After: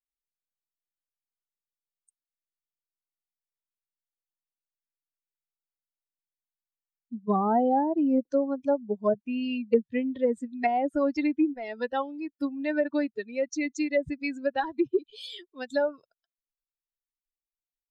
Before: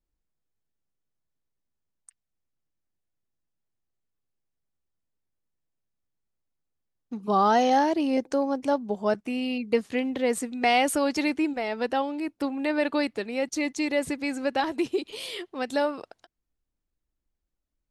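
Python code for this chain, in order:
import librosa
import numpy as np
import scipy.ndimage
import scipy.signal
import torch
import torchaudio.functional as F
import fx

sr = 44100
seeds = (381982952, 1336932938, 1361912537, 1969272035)

y = fx.bin_expand(x, sr, power=2.0)
y = fx.env_lowpass_down(y, sr, base_hz=640.0, full_db=-22.5)
y = y * librosa.db_to_amplitude(4.0)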